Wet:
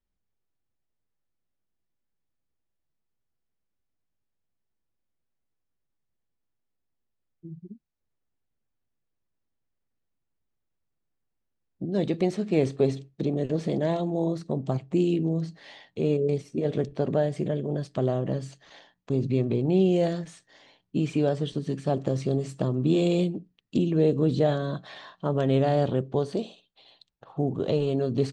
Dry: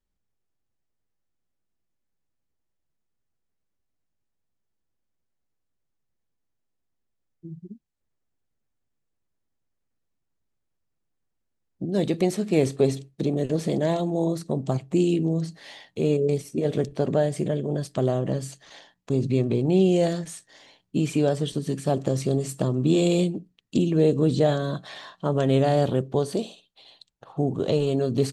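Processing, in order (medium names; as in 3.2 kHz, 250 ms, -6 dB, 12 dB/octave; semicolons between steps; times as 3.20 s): distance through air 100 m; trim -2 dB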